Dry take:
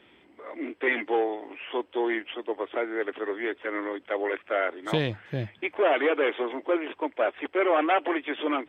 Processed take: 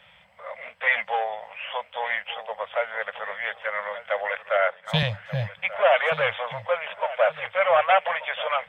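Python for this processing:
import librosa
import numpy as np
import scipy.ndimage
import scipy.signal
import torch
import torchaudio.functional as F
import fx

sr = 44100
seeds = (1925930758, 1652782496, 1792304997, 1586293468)

y = scipy.signal.sosfilt(scipy.signal.ellip(3, 1.0, 50, [180.0, 550.0], 'bandstop', fs=sr, output='sos'), x)
y = fx.echo_feedback(y, sr, ms=1184, feedback_pct=23, wet_db=-15.0)
y = fx.band_widen(y, sr, depth_pct=100, at=(4.57, 5.03))
y = F.gain(torch.from_numpy(y), 5.5).numpy()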